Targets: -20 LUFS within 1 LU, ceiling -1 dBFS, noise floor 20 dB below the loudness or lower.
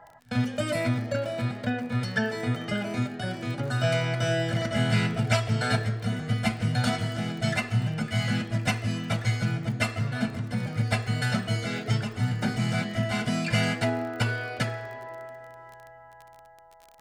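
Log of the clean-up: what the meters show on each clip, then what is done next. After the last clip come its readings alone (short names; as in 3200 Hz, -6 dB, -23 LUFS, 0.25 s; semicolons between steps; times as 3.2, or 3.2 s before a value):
ticks 35/s; loudness -28.0 LUFS; peak -10.0 dBFS; loudness target -20.0 LUFS
-> de-click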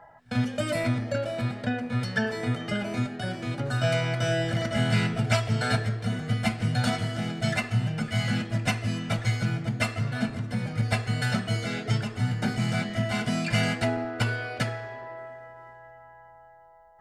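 ticks 0.059/s; loudness -28.0 LUFS; peak -10.0 dBFS; loudness target -20.0 LUFS
-> gain +8 dB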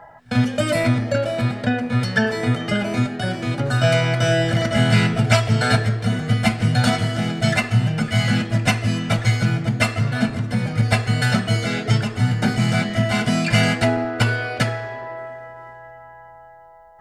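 loudness -20.0 LUFS; peak -2.0 dBFS; noise floor -44 dBFS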